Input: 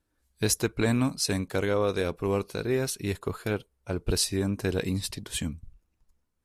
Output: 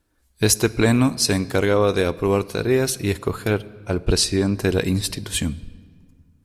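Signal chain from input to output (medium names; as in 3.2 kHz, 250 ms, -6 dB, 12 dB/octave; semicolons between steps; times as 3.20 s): 4.05–4.55 s: low-pass 8.6 kHz 12 dB/octave; on a send: peaking EQ 4.7 kHz +4 dB + reverberation RT60 1.8 s, pre-delay 3 ms, DRR 17.5 dB; on the sum: trim +8 dB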